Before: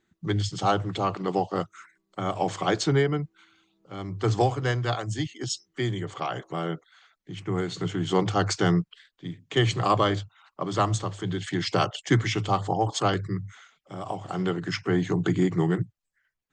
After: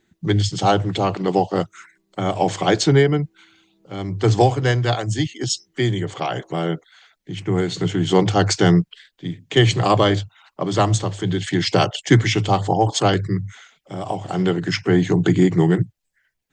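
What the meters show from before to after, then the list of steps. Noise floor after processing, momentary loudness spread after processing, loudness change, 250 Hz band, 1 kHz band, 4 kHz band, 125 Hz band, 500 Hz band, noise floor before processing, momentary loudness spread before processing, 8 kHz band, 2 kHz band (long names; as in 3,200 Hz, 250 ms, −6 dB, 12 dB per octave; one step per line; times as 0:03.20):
−71 dBFS, 14 LU, +7.5 dB, +8.0 dB, +5.5 dB, +8.0 dB, +8.0 dB, +8.0 dB, −79 dBFS, 14 LU, +8.0 dB, +6.5 dB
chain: parametric band 1,200 Hz −7.5 dB 0.48 octaves
level +8 dB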